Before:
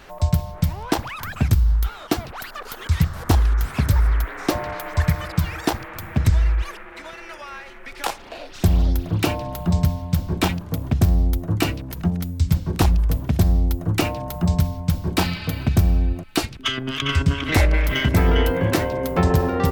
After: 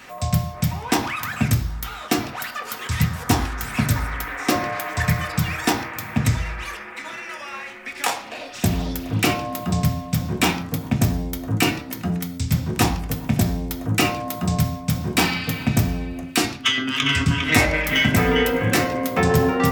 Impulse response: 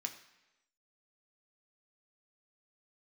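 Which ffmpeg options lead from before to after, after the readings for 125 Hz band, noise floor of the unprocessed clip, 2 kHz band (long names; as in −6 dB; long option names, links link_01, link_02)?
−2.5 dB, −39 dBFS, +5.5 dB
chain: -filter_complex "[0:a]bandreject=frequency=65.94:width_type=h:width=4,bandreject=frequency=131.88:width_type=h:width=4,bandreject=frequency=197.82:width_type=h:width=4,bandreject=frequency=263.76:width_type=h:width=4,bandreject=frequency=329.7:width_type=h:width=4,bandreject=frequency=395.64:width_type=h:width=4,bandreject=frequency=461.58:width_type=h:width=4,bandreject=frequency=527.52:width_type=h:width=4,bandreject=frequency=593.46:width_type=h:width=4,bandreject=frequency=659.4:width_type=h:width=4,bandreject=frequency=725.34:width_type=h:width=4,bandreject=frequency=791.28:width_type=h:width=4,bandreject=frequency=857.22:width_type=h:width=4,bandreject=frequency=923.16:width_type=h:width=4,bandreject=frequency=989.1:width_type=h:width=4,bandreject=frequency=1055.04:width_type=h:width=4,bandreject=frequency=1120.98:width_type=h:width=4,bandreject=frequency=1186.92:width_type=h:width=4,bandreject=frequency=1252.86:width_type=h:width=4,bandreject=frequency=1318.8:width_type=h:width=4,bandreject=frequency=1384.74:width_type=h:width=4,bandreject=frequency=1450.68:width_type=h:width=4,bandreject=frequency=1516.62:width_type=h:width=4,bandreject=frequency=1582.56:width_type=h:width=4,bandreject=frequency=1648.5:width_type=h:width=4,bandreject=frequency=1714.44:width_type=h:width=4,bandreject=frequency=1780.38:width_type=h:width=4,bandreject=frequency=1846.32:width_type=h:width=4,bandreject=frequency=1912.26:width_type=h:width=4,bandreject=frequency=1978.2:width_type=h:width=4[link_01];[1:a]atrim=start_sample=2205,atrim=end_sample=6615[link_02];[link_01][link_02]afir=irnorm=-1:irlink=0,volume=6dB"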